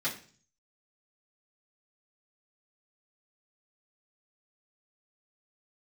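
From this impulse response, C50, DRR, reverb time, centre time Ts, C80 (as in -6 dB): 10.5 dB, -9.5 dB, 0.45 s, 18 ms, 15.0 dB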